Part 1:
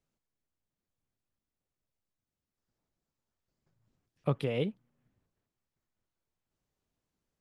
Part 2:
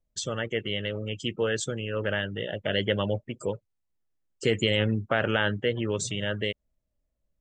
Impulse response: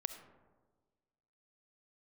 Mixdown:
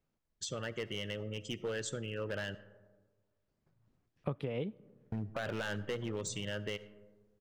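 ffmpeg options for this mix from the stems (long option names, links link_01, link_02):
-filter_complex "[0:a]lowpass=frequency=2600:poles=1,volume=2dB,asplit=2[link_01][link_02];[link_02]volume=-18.5dB[link_03];[1:a]asoftclip=type=hard:threshold=-22dB,adelay=250,volume=-10.5dB,asplit=3[link_04][link_05][link_06];[link_04]atrim=end=2.55,asetpts=PTS-STARTPTS,afade=type=out:start_time=2.546:duration=0.004:curve=hsin[link_07];[link_05]atrim=start=2.55:end=5.12,asetpts=PTS-STARTPTS,volume=0[link_08];[link_06]atrim=start=5.12,asetpts=PTS-STARTPTS,afade=type=in:duration=0.004:curve=hsin[link_09];[link_07][link_08][link_09]concat=n=3:v=0:a=1,asplit=2[link_10][link_11];[link_11]volume=-3.5dB[link_12];[2:a]atrim=start_sample=2205[link_13];[link_03][link_12]amix=inputs=2:normalize=0[link_14];[link_14][link_13]afir=irnorm=-1:irlink=0[link_15];[link_01][link_10][link_15]amix=inputs=3:normalize=0,acompressor=threshold=-34dB:ratio=4"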